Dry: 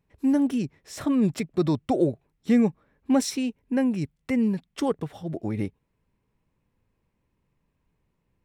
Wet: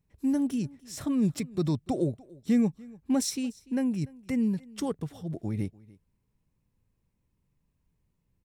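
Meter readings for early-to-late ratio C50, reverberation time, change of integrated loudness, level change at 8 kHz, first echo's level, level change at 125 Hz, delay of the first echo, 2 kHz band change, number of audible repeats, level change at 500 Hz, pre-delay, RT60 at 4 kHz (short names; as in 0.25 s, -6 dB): none, none, -4.0 dB, 0.0 dB, -23.0 dB, -1.0 dB, 0.293 s, -7.5 dB, 1, -7.0 dB, none, none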